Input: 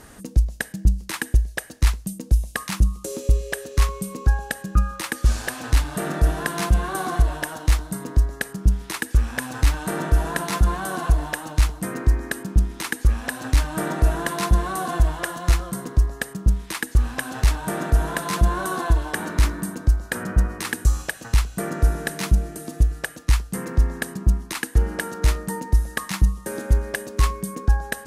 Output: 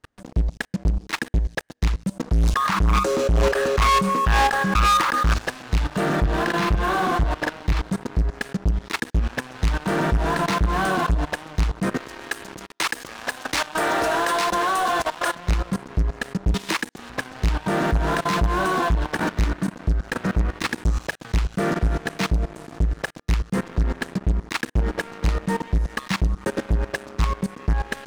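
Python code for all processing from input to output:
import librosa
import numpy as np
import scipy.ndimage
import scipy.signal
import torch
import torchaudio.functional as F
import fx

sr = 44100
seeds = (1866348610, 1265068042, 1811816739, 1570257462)

y = fx.chain(x, sr, fx.peak_eq(hz=1200.0, db=14.0, octaves=1.3),
    fx.sustainer(db_per_s=23.0), at=(2.13, 5.34))
y = fx.chain(y, sr, fx.lowpass(hz=4900.0, slope=12),
    fx.doubler(ms=43.0, db=-4.5), at=(6.16, 7.82))
y = fx.chain(y, sr, fx.highpass(hz=500.0, slope=12),
    fx.high_shelf(hz=7600.0, db=9.0),
    fx.leveller(passes=1), at=(11.98, 15.35))
y = fx.chain(y, sr, fx.highpass(hz=190.0, slope=24),
    fx.high_shelf(hz=5800.0, db=6.0),
    fx.band_squash(depth_pct=100), at=(16.54, 17.1))
y = scipy.signal.sosfilt(scipy.signal.butter(2, 4600.0, 'lowpass', fs=sr, output='sos'), y)
y = fx.level_steps(y, sr, step_db=15)
y = fx.leveller(y, sr, passes=5)
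y = F.gain(torch.from_numpy(y), -8.0).numpy()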